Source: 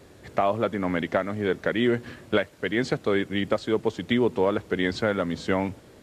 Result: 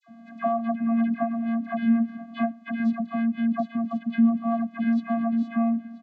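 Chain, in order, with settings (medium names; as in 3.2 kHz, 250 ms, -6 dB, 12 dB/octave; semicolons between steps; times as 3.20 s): on a send: delay 981 ms -21.5 dB; on the sum: vocoder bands 16, square 230 Hz; treble shelf 4.1 kHz -12 dB; phase dispersion lows, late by 69 ms, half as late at 1.3 kHz; in parallel at +1 dB: compression, threshold -40 dBFS, peak gain reduction 21.5 dB; on the sum: peaking EQ 1.1 kHz +4 dB 1.5 oct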